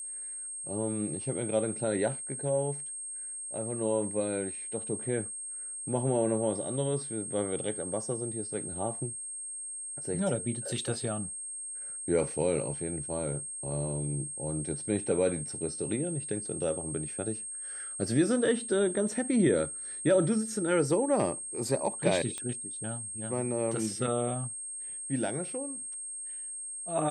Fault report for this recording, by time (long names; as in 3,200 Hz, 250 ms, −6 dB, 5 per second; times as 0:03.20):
whistle 8,500 Hz −37 dBFS
0:22.38: click −22 dBFS